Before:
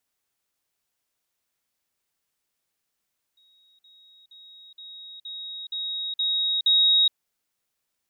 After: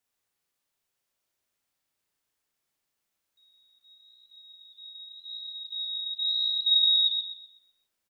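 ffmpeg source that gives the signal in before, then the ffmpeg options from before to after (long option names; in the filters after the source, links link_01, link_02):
-f lavfi -i "aevalsrc='pow(10,(-57.5+6*floor(t/0.47))/20)*sin(2*PI*3780*t)*clip(min(mod(t,0.47),0.42-mod(t,0.47))/0.005,0,1)':duration=3.76:sample_rate=44100"
-filter_complex "[0:a]flanger=delay=8.8:depth=5.8:regen=-60:speed=0.9:shape=sinusoidal,asplit=2[link_01][link_02];[link_02]adelay=37,volume=-4dB[link_03];[link_01][link_03]amix=inputs=2:normalize=0,asplit=2[link_04][link_05];[link_05]adelay=126,lowpass=frequency=3600:poles=1,volume=-3dB,asplit=2[link_06][link_07];[link_07]adelay=126,lowpass=frequency=3600:poles=1,volume=0.47,asplit=2[link_08][link_09];[link_09]adelay=126,lowpass=frequency=3600:poles=1,volume=0.47,asplit=2[link_10][link_11];[link_11]adelay=126,lowpass=frequency=3600:poles=1,volume=0.47,asplit=2[link_12][link_13];[link_13]adelay=126,lowpass=frequency=3600:poles=1,volume=0.47,asplit=2[link_14][link_15];[link_15]adelay=126,lowpass=frequency=3600:poles=1,volume=0.47[link_16];[link_06][link_08][link_10][link_12][link_14][link_16]amix=inputs=6:normalize=0[link_17];[link_04][link_17]amix=inputs=2:normalize=0"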